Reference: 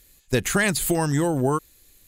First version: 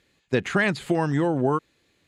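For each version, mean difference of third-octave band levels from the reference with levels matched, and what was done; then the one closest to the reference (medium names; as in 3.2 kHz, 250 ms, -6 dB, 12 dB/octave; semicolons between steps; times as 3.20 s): 5.0 dB: band-pass 130–3000 Hz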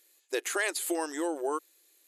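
7.0 dB: brick-wall FIR band-pass 290–13000 Hz; trim -7.5 dB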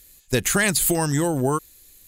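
1.5 dB: treble shelf 4.3 kHz +6.5 dB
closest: third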